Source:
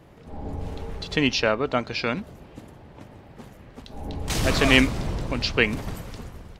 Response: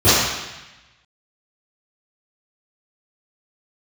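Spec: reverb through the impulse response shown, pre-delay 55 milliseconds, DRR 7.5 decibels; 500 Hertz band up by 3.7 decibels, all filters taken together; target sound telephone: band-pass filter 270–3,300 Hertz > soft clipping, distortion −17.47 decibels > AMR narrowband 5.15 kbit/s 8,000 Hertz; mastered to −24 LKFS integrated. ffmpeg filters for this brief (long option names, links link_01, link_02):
-filter_complex "[0:a]equalizer=frequency=500:width_type=o:gain=5,asplit=2[link_01][link_02];[1:a]atrim=start_sample=2205,adelay=55[link_03];[link_02][link_03]afir=irnorm=-1:irlink=0,volume=-34dB[link_04];[link_01][link_04]amix=inputs=2:normalize=0,highpass=270,lowpass=3300,asoftclip=threshold=-9.5dB,volume=3dB" -ar 8000 -c:a libopencore_amrnb -b:a 5150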